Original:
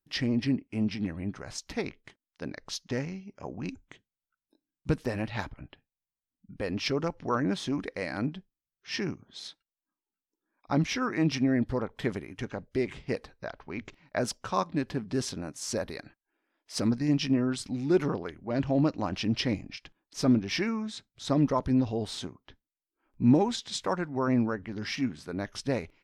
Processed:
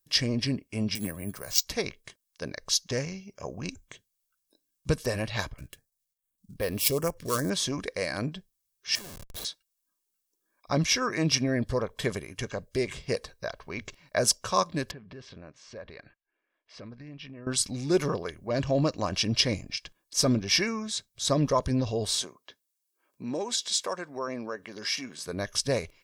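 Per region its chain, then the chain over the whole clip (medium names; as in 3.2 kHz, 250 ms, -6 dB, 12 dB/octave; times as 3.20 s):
0.95–1.65 s: peaking EQ 74 Hz -5 dB 1.6 oct + careless resampling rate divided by 4×, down none, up hold + three bands expanded up and down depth 40%
5.58–7.50 s: dead-time distortion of 0.058 ms + step-sequenced notch 5 Hz 790–7100 Hz
8.95–9.45 s: compression, threshold -38 dBFS + Gaussian low-pass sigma 2.6 samples + Schmitt trigger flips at -51.5 dBFS
14.91–17.47 s: compression 3:1, threshold -37 dBFS + four-pole ladder low-pass 3.3 kHz, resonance 25%
22.22–25.26 s: high-pass 280 Hz + compression 1.5:1, threshold -39 dBFS
whole clip: tone controls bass -1 dB, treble +13 dB; comb 1.8 ms, depth 44%; trim +1.5 dB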